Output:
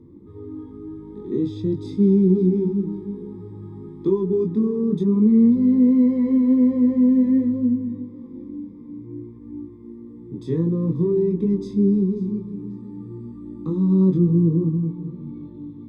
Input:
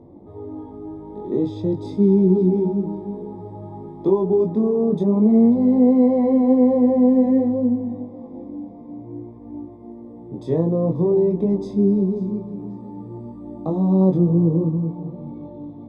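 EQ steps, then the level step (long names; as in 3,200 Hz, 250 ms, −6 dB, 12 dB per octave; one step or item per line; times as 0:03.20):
Butterworth band-reject 680 Hz, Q 0.87
0.0 dB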